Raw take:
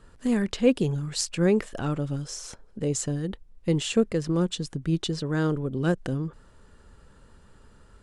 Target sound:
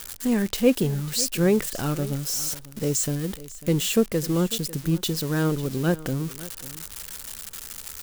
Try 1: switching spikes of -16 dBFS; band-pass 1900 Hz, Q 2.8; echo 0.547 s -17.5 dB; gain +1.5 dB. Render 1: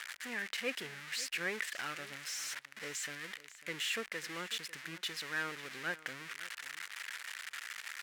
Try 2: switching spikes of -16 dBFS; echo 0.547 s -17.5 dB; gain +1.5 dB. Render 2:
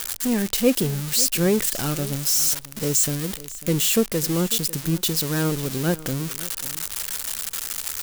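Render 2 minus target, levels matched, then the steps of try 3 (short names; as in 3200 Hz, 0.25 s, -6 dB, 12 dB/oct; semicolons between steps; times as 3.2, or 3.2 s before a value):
switching spikes: distortion +8 dB
switching spikes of -24.5 dBFS; echo 0.547 s -17.5 dB; gain +1.5 dB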